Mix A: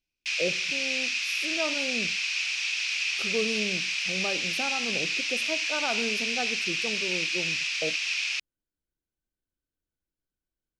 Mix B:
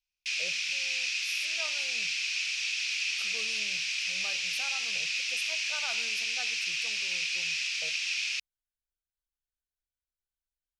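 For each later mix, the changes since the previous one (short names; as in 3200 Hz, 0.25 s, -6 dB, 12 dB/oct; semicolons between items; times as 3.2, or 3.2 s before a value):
master: add passive tone stack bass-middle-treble 10-0-10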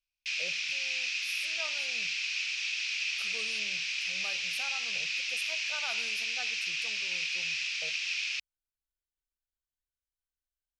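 background: add air absorption 71 m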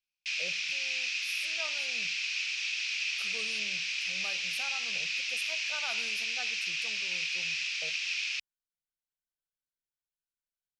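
speech: add resonant low shelf 110 Hz -12.5 dB, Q 1.5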